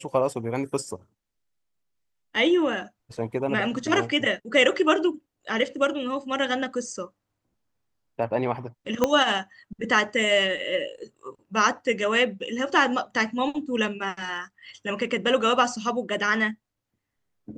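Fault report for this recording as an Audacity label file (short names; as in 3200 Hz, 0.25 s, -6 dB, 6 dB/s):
9.040000	9.040000	pop -7 dBFS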